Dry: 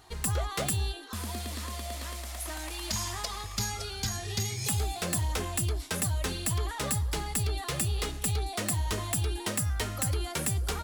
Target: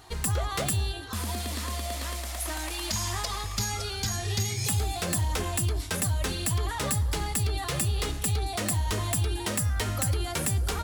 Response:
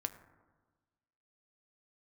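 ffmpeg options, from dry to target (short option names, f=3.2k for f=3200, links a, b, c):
-filter_complex "[0:a]alimiter=level_in=1.5dB:limit=-24dB:level=0:latency=1:release=54,volume=-1.5dB,asplit=2[a][b];[1:a]atrim=start_sample=2205[c];[b][c]afir=irnorm=-1:irlink=0,volume=-2.5dB[d];[a][d]amix=inputs=2:normalize=0"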